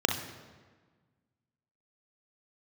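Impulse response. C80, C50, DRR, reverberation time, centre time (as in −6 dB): 9.5 dB, 5.0 dB, 2.5 dB, 1.5 s, 32 ms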